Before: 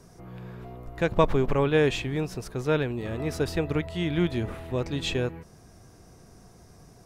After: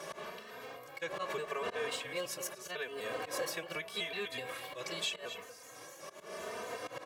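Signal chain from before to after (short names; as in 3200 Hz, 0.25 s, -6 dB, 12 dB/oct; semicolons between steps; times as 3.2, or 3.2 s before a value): trilling pitch shifter +2.5 st, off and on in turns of 0.125 s; wind noise 470 Hz -30 dBFS; HPF 290 Hz 12 dB/oct; auto swell 0.156 s; tilt shelf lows -9 dB, about 1100 Hz; outdoor echo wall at 41 m, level -16 dB; dynamic EQ 4300 Hz, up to -5 dB, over -46 dBFS, Q 1.1; compressor 6:1, threshold -34 dBFS, peak gain reduction 11.5 dB; comb 1.8 ms, depth 53%; endless flanger 3.1 ms +0.82 Hz; gain +1.5 dB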